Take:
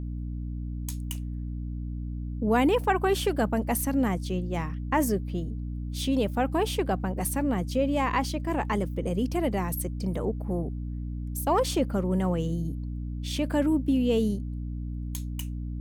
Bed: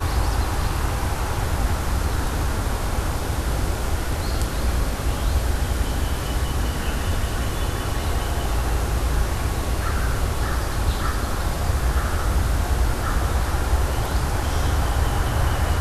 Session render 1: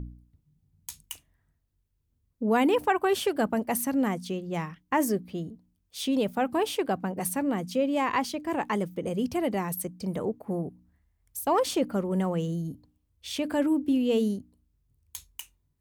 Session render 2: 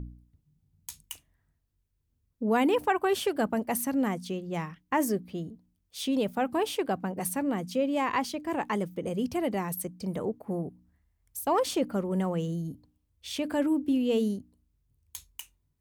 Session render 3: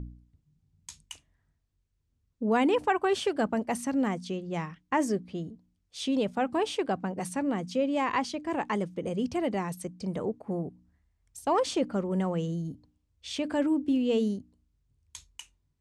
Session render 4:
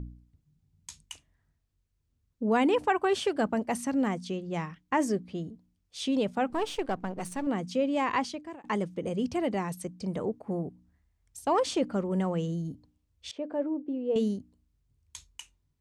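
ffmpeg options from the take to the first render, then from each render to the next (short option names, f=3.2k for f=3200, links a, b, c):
-af "bandreject=f=60:t=h:w=4,bandreject=f=120:t=h:w=4,bandreject=f=180:t=h:w=4,bandreject=f=240:t=h:w=4,bandreject=f=300:t=h:w=4"
-af "volume=-1.5dB"
-af "lowpass=f=8.3k:w=0.5412,lowpass=f=8.3k:w=1.3066"
-filter_complex "[0:a]asettb=1/sr,asplit=3[a][b][c];[a]atrim=end=6.504[d];[b]atrim=start=6.5:end=7.47,asetpts=PTS-STARTPTS,afade=t=in:d=0.004:c=qsin,afade=t=out:st=0.966:d=0.004:c=qsin,aeval=exprs='if(lt(val(0),0),0.447*val(0),val(0))':c=same[e];[c]atrim=start=7.466[f];[d][e]acrossfade=d=0.004:c1=hsin:c2=qsin[g];[g][f]acrossfade=d=0.004:c1=qsin:c2=hsin,asettb=1/sr,asplit=3[h][i][j];[h]atrim=end=13.314[k];[i]atrim=start=13.31:end=14.16,asetpts=PTS-STARTPTS,afade=t=in:d=0.004:c=qsin,afade=t=out:st=0.846:d=0.004:c=qsin,bandpass=f=520:t=q:w=1.5[l];[j]atrim=start=14.156[m];[k][l]acrossfade=d=0.004:c1=hsin:c2=qsin[n];[n][m]acrossfade=d=0.004:c1=qsin:c2=hsin,asplit=2[o][p];[o]atrim=end=8.64,asetpts=PTS-STARTPTS,afade=t=out:st=8.22:d=0.42[q];[p]atrim=start=8.64,asetpts=PTS-STARTPTS,afade=t=in:d=0.004:c=hsin[r];[q][r]concat=n=2:v=0:a=1"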